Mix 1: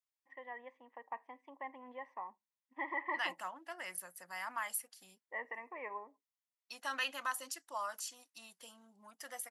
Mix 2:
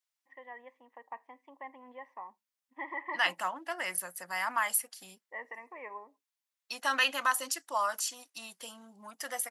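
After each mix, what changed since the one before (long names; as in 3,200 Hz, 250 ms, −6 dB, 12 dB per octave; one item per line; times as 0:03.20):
second voice +9.5 dB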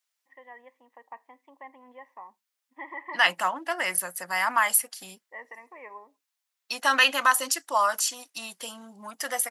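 second voice +7.5 dB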